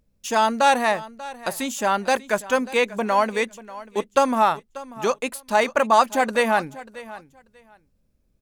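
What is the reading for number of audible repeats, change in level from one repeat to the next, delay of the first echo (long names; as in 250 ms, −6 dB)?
2, −15.0 dB, 589 ms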